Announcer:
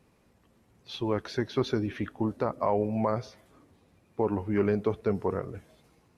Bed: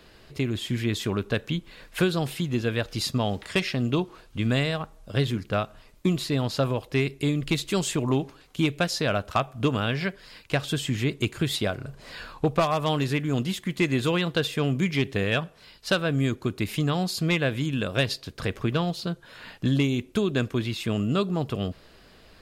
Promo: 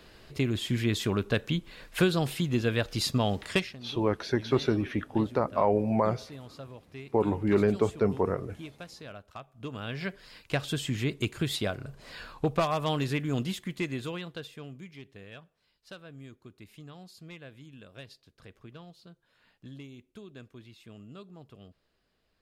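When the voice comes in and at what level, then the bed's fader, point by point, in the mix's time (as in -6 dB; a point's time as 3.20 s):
2.95 s, +2.0 dB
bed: 3.56 s -1 dB
3.77 s -19.5 dB
9.47 s -19.5 dB
10.15 s -4 dB
13.47 s -4 dB
14.96 s -22.5 dB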